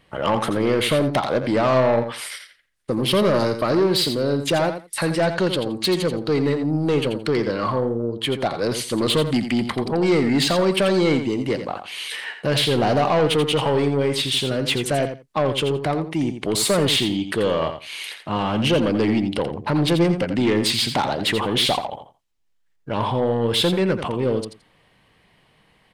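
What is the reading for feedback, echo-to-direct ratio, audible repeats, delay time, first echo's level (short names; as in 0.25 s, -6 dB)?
16%, -9.0 dB, 2, 85 ms, -9.0 dB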